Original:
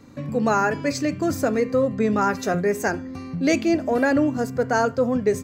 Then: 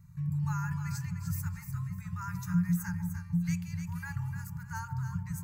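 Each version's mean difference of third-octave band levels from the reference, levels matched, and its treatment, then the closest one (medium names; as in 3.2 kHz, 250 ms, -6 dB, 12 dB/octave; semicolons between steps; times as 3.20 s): 14.5 dB: FFT band-reject 190–840 Hz; FFT filter 490 Hz 0 dB, 980 Hz -19 dB, 1.8 kHz -17 dB, 3.5 kHz -24 dB, 13 kHz -1 dB; on a send: echo whose repeats swap between lows and highs 150 ms, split 880 Hz, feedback 52%, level -2.5 dB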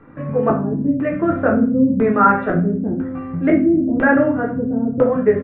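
9.5 dB: LFO low-pass square 1 Hz 250–1500 Hz; simulated room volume 37 m³, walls mixed, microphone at 0.62 m; resampled via 8 kHz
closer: second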